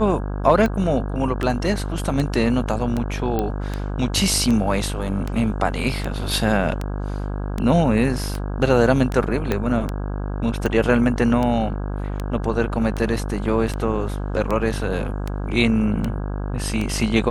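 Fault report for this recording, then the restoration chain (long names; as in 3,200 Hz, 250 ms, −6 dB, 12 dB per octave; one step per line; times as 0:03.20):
mains buzz 50 Hz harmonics 33 −26 dBFS
scratch tick 78 rpm −12 dBFS
0:03.39: click −10 dBFS
0:09.52: click −8 dBFS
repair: click removal
hum removal 50 Hz, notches 33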